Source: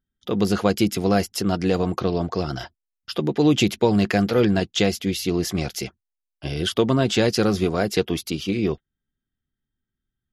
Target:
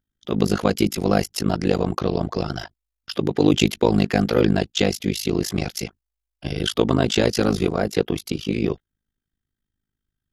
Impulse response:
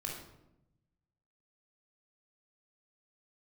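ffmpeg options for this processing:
-filter_complex "[0:a]tremolo=f=52:d=0.974,asplit=3[a][b][c];[a]afade=t=out:st=7.69:d=0.02[d];[b]adynamicequalizer=threshold=0.00794:dfrequency=1900:dqfactor=0.7:tfrequency=1900:tqfactor=0.7:attack=5:release=100:ratio=0.375:range=2.5:mode=cutabove:tftype=highshelf,afade=t=in:st=7.69:d=0.02,afade=t=out:st=8.5:d=0.02[e];[c]afade=t=in:st=8.5:d=0.02[f];[d][e][f]amix=inputs=3:normalize=0,volume=4.5dB"

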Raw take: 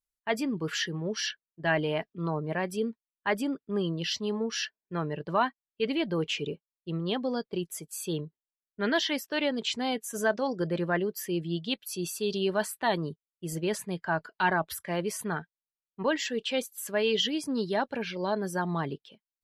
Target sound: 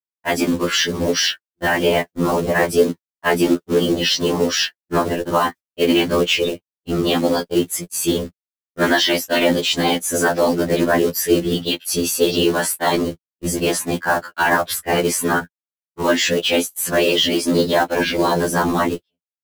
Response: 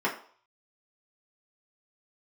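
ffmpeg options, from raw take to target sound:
-filter_complex "[0:a]afftfilt=real='hypot(re,im)*cos(2*PI*random(0))':imag='hypot(re,im)*sin(2*PI*random(1))':win_size=512:overlap=0.75,acrossover=split=210[a][b];[a]acompressor=threshold=-52dB:ratio=6[c];[c][b]amix=inputs=2:normalize=0,acrusher=bits=4:mode=log:mix=0:aa=0.000001,agate=range=-38dB:threshold=-46dB:ratio=16:detection=peak,alimiter=level_in=28dB:limit=-1dB:release=50:level=0:latency=1,afftfilt=real='re*2*eq(mod(b,4),0)':imag='im*2*eq(mod(b,4),0)':win_size=2048:overlap=0.75,volume=-4dB"

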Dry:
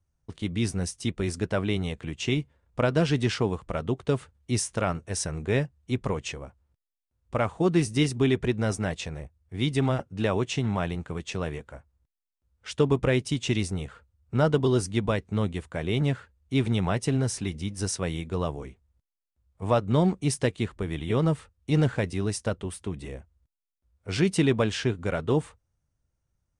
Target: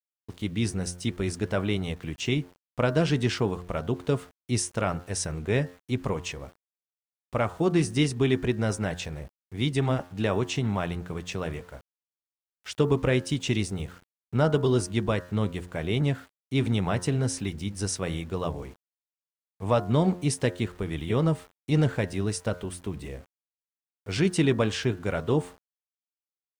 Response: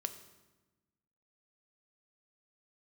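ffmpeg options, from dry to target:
-af "bandreject=f=88.87:t=h:w=4,bandreject=f=177.74:t=h:w=4,bandreject=f=266.61:t=h:w=4,bandreject=f=355.48:t=h:w=4,bandreject=f=444.35:t=h:w=4,bandreject=f=533.22:t=h:w=4,bandreject=f=622.09:t=h:w=4,bandreject=f=710.96:t=h:w=4,bandreject=f=799.83:t=h:w=4,bandreject=f=888.7:t=h:w=4,bandreject=f=977.57:t=h:w=4,bandreject=f=1.06644k:t=h:w=4,bandreject=f=1.15531k:t=h:w=4,bandreject=f=1.24418k:t=h:w=4,bandreject=f=1.33305k:t=h:w=4,bandreject=f=1.42192k:t=h:w=4,bandreject=f=1.51079k:t=h:w=4,bandreject=f=1.59966k:t=h:w=4,bandreject=f=1.68853k:t=h:w=4,bandreject=f=1.7774k:t=h:w=4,bandreject=f=1.86627k:t=h:w=4,aeval=exprs='val(0)*gte(abs(val(0)),0.00316)':c=same"

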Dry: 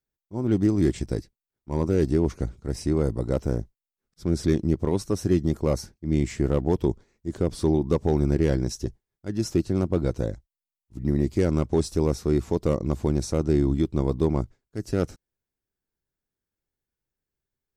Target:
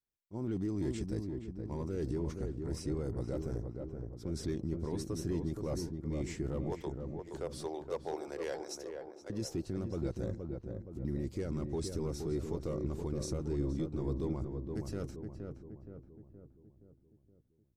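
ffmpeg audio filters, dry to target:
-filter_complex "[0:a]asettb=1/sr,asplit=3[a][b][c];[a]atrim=end=6.724[d];[b]atrim=start=6.72:end=9.3,asetpts=PTS-STARTPTS,afade=t=in:d=0.004:c=qsin,afade=t=out:st=2.576:d=0.004:c=qsin,highpass=f=470:w=0.5412,highpass=f=470:w=1.3066[e];[c]atrim=start=9.296[f];[d][e]acrossfade=d=0.004:c1=hsin:c2=qsin[g];[g][f]acrossfade=d=0.004:c1=qsin:c2=hsin,alimiter=limit=-19.5dB:level=0:latency=1:release=10,asplit=2[h][i];[i]adelay=471,lowpass=f=1.2k:p=1,volume=-4.5dB,asplit=2[j][k];[k]adelay=471,lowpass=f=1.2k:p=1,volume=0.54,asplit=2[l][m];[m]adelay=471,lowpass=f=1.2k:p=1,volume=0.54,asplit=2[n][o];[o]adelay=471,lowpass=f=1.2k:p=1,volume=0.54,asplit=2[p][q];[q]adelay=471,lowpass=f=1.2k:p=1,volume=0.54,asplit=2[r][s];[s]adelay=471,lowpass=f=1.2k:p=1,volume=0.54,asplit=2[t][u];[u]adelay=471,lowpass=f=1.2k:p=1,volume=0.54[v];[h][j][l][n][p][r][t][v]amix=inputs=8:normalize=0,volume=-8.5dB"

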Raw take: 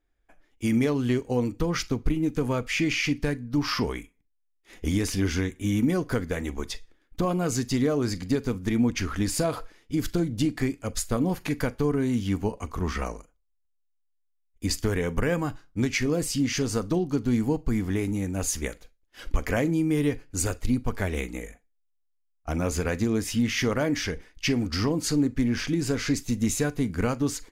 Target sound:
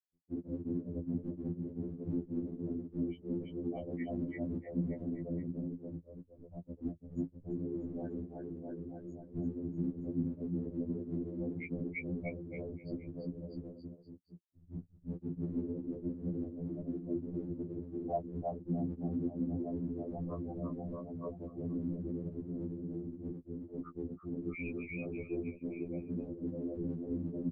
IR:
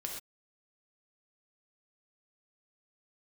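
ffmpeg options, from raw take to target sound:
-filter_complex "[0:a]areverse,asplit=2[a][b];[b]asoftclip=type=tanh:threshold=-28.5dB,volume=-11.5dB[c];[a][c]amix=inputs=2:normalize=0,afftfilt=real='re*gte(hypot(re,im),0.316)':imag='im*gte(hypot(re,im),0.316)':win_size=1024:overlap=0.75,asplit=2[d][e];[e]aecho=0:1:340|646|921.4|1169|1392:0.631|0.398|0.251|0.158|0.1[f];[d][f]amix=inputs=2:normalize=0,acompressor=threshold=-30dB:ratio=6,afftdn=nr=17:nf=-49,aemphasis=mode=production:type=75fm,acompressor=mode=upward:threshold=-46dB:ratio=2.5,highpass=f=130:w=0.5412,highpass=f=130:w=1.3066,equalizer=f=220:t=q:w=4:g=5,equalizer=f=430:t=q:w=4:g=-8,equalizer=f=710:t=q:w=4:g=4,equalizer=f=1.2k:t=q:w=4:g=-5,lowpass=f=2.6k:w=0.5412,lowpass=f=2.6k:w=1.3066,afftfilt=real='hypot(re,im)*cos(2*PI*random(0))':imag='hypot(re,im)*sin(2*PI*random(1))':win_size=512:overlap=0.75,afftfilt=real='re*2*eq(mod(b,4),0)':imag='im*2*eq(mod(b,4),0)':win_size=2048:overlap=0.75,volume=3.5dB"

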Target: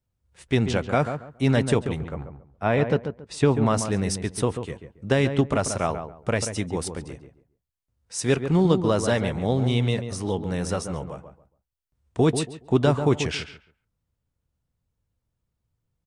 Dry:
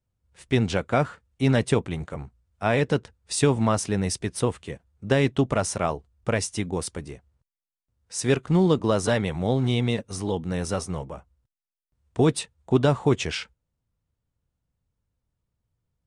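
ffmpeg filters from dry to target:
-filter_complex "[0:a]asettb=1/sr,asplit=3[a][b][c];[a]atrim=end=1.994[d];[b]atrim=start=1.99:end=3.66,asetpts=PTS-STARTPTS,afade=t=in:d=0.004:c=qsin,afade=t=out:st=1.666:d=0.004:c=qsin,aemphasis=mode=reproduction:type=75fm[e];[c]atrim=start=3.656[f];[d][e]acrossfade=d=0.004:c1=hsin:c2=qsin[g];[g][f]acrossfade=d=0.004:c1=qsin:c2=hsin,asplit=2[h][i];[i]adelay=139,lowpass=f=1.5k:p=1,volume=-8dB,asplit=2[j][k];[k]adelay=139,lowpass=f=1.5k:p=1,volume=0.24,asplit=2[l][m];[m]adelay=139,lowpass=f=1.5k:p=1,volume=0.24[n];[h][j][l][n]amix=inputs=4:normalize=0"

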